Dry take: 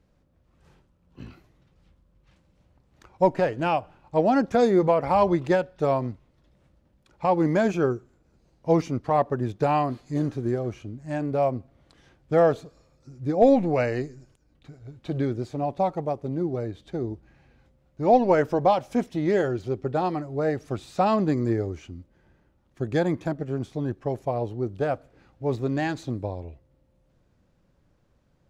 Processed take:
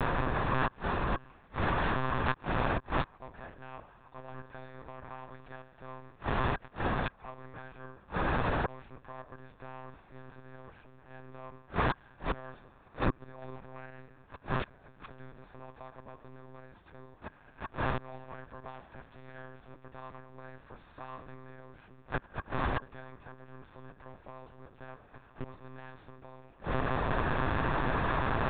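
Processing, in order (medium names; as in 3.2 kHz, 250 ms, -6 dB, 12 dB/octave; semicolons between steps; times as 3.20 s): spectral levelling over time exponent 0.4; tilt shelf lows -8 dB, about 640 Hz; inverted gate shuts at -20 dBFS, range -33 dB; small resonant body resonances 270/1100/1600 Hz, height 12 dB, ringing for 45 ms; monotone LPC vocoder at 8 kHz 130 Hz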